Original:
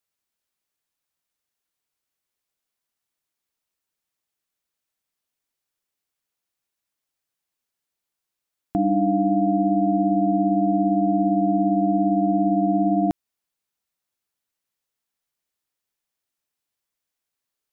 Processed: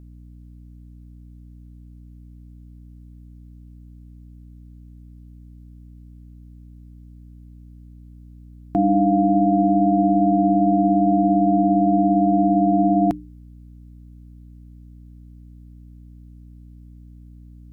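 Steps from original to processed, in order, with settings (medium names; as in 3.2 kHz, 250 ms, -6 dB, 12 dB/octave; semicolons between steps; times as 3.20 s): in parallel at -2 dB: peak limiter -18 dBFS, peak gain reduction 7 dB; on the sum: hum notches 60/120/180/240/300 Hz; hum 60 Hz, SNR 20 dB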